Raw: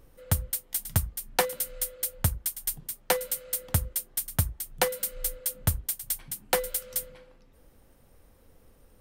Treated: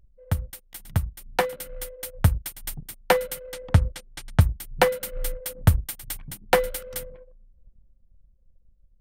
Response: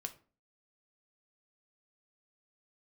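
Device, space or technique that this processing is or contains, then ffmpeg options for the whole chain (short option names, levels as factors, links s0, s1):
voice memo with heavy noise removal: -filter_complex "[0:a]asettb=1/sr,asplit=3[s0][s1][s2];[s0]atrim=end=3.534[s3];[s1]atrim=start=3.53:end=4.41,asetpts=PTS-STARTPTS,afade=t=in:d=0.004:c=qsin,afade=t=out:st=0.876:d=0.004:c=qsin,lowpass=6400[s4];[s2]atrim=start=4.406[s5];[s3][s4]acrossfade=d=0.004:c1=hsin:c2=qsin[s6];[s6][s5]acrossfade=d=0.004:c1=qsin:c2=hsin,anlmdn=0.0251,dynaudnorm=f=250:g=13:m=3.98,bass=f=250:g=2,treble=f=4000:g=-12"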